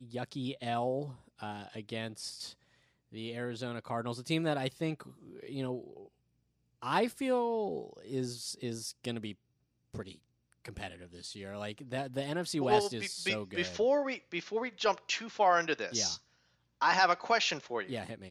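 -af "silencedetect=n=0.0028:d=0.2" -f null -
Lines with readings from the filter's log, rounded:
silence_start: 2.53
silence_end: 3.12 | silence_duration: 0.59
silence_start: 6.08
silence_end: 6.82 | silence_duration: 0.75
silence_start: 9.34
silence_end: 9.94 | silence_duration: 0.60
silence_start: 10.16
silence_end: 10.52 | silence_duration: 0.36
silence_start: 16.19
silence_end: 16.81 | silence_duration: 0.63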